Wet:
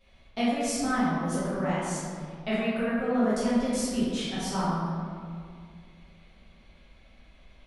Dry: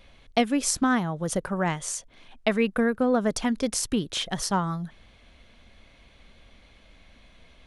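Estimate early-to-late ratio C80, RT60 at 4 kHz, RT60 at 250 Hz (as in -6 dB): -0.5 dB, 1.1 s, 2.8 s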